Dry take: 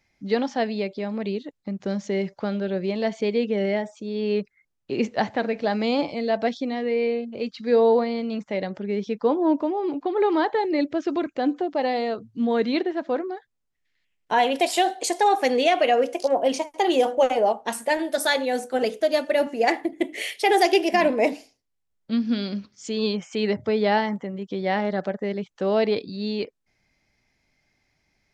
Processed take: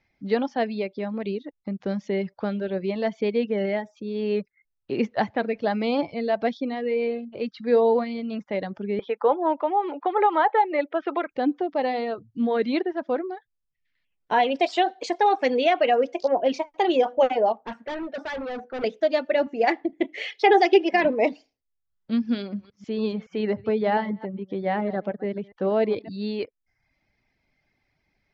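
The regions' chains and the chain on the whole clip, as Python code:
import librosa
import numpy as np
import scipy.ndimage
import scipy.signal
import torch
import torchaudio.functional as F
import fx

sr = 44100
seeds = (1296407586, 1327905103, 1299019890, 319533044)

y = fx.chain(x, sr, fx.cabinet(low_hz=490.0, low_slope=12, high_hz=3500.0, hz=(520.0, 840.0, 1300.0, 2000.0, 3300.0), db=(6, 8, 7, 4, 3)),
    fx.band_squash(depth_pct=40), at=(8.99, 11.31))
y = fx.chain(y, sr, fx.lowpass(hz=2200.0, slope=12),
    fx.overload_stage(gain_db=28.5), at=(17.55, 18.84))
y = fx.chain(y, sr, fx.bandpass_edges(low_hz=140.0, high_hz=6800.0),
    fx.comb(ms=2.4, depth=0.55), at=(20.26, 21.05))
y = fx.chain(y, sr, fx.reverse_delay(ms=141, wet_db=-13.5),
    fx.high_shelf(hz=2900.0, db=-10.5), at=(22.42, 26.11))
y = fx.dereverb_blind(y, sr, rt60_s=0.58)
y = scipy.signal.sosfilt(scipy.signal.bessel(8, 3500.0, 'lowpass', norm='mag', fs=sr, output='sos'), y)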